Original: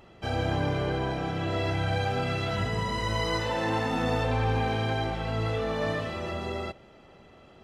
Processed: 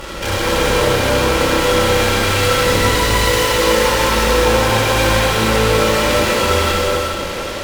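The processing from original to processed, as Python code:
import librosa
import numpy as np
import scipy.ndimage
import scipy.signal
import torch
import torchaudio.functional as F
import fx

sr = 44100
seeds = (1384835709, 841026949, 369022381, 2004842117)

p1 = fx.lower_of_two(x, sr, delay_ms=2.1)
p2 = fx.peak_eq(p1, sr, hz=750.0, db=-11.0, octaves=0.21)
p3 = p2 + 0.6 * np.pad(p2, (int(3.7 * sr / 1000.0), 0))[:len(p2)]
p4 = fx.fuzz(p3, sr, gain_db=56.0, gate_db=-54.0)
p5 = p3 + (p4 * 10.0 ** (-6.5 / 20.0))
p6 = p5 + 10.0 ** (-9.5 / 20.0) * np.pad(p5, (int(429 * sr / 1000.0), 0))[:len(p5)]
p7 = fx.rev_gated(p6, sr, seeds[0], gate_ms=450, shape='flat', drr_db=-4.0)
y = p7 * 10.0 ** (-2.0 / 20.0)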